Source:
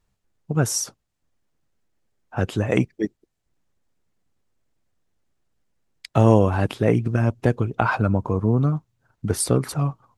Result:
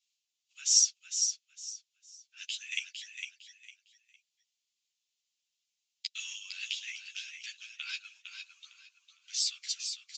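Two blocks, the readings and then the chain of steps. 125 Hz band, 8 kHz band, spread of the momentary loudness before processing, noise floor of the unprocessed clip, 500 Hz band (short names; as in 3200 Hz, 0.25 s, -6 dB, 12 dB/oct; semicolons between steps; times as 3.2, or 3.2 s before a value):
under -40 dB, n/a, 11 LU, -76 dBFS, under -40 dB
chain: steep high-pass 2700 Hz 36 dB/oct; downsampling 16000 Hz; on a send: feedback echo 0.456 s, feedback 26%, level -6.5 dB; on the sum: ensemble effect; gain +7 dB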